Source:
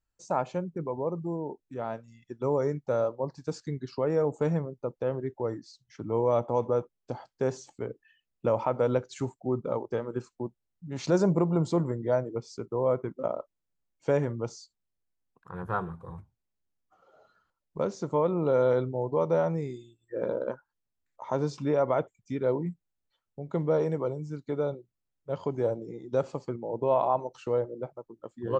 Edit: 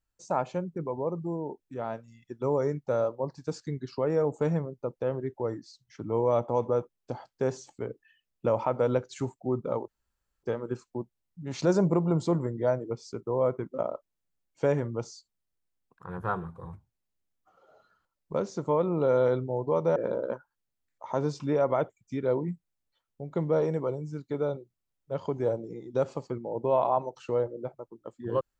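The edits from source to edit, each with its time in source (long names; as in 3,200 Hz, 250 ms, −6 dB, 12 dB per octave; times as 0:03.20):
0:09.88: splice in room tone 0.55 s
0:19.41–0:20.14: remove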